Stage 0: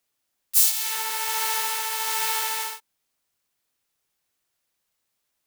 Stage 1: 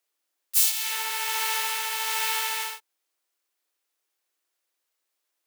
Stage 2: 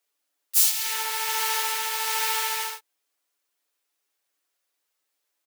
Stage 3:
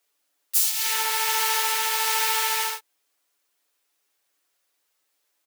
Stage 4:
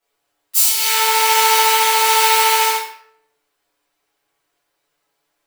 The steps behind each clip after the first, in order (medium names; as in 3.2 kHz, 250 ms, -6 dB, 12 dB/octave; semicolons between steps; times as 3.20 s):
Chebyshev high-pass 290 Hz, order 8; dynamic bell 2.7 kHz, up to +5 dB, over -43 dBFS, Q 1.2; trim -2 dB
comb 7 ms
compression 3:1, threshold -25 dBFS, peak gain reduction 8.5 dB; trim +5 dB
reverberation RT60 0.75 s, pre-delay 6 ms, DRR -10.5 dB; tape noise reduction on one side only decoder only; trim -1 dB